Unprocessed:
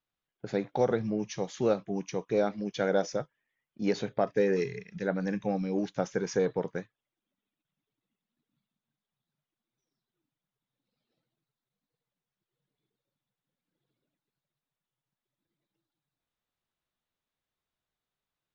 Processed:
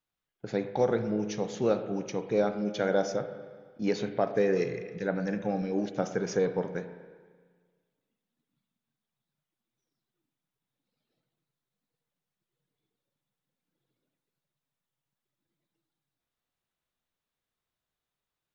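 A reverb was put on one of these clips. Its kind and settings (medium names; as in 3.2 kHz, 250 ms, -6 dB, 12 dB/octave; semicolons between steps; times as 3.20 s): spring tank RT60 1.6 s, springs 34/38/57 ms, chirp 55 ms, DRR 9 dB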